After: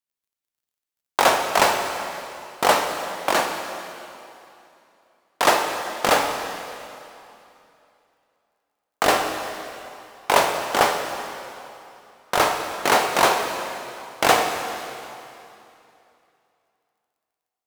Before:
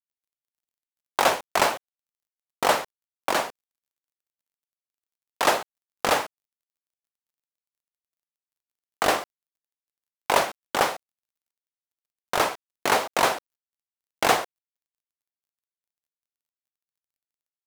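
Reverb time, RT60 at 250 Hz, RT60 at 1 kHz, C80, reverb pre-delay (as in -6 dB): 2.8 s, 2.9 s, 2.9 s, 6.0 dB, 5 ms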